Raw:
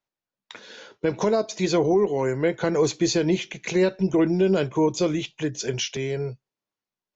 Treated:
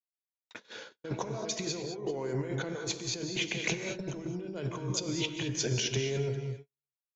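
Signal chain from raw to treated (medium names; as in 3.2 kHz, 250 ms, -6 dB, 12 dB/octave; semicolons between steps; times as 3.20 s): delay 400 ms -21.5 dB; compressor with a negative ratio -30 dBFS, ratio -1; gated-style reverb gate 240 ms rising, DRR 6 dB; gate -35 dBFS, range -51 dB; trim -6 dB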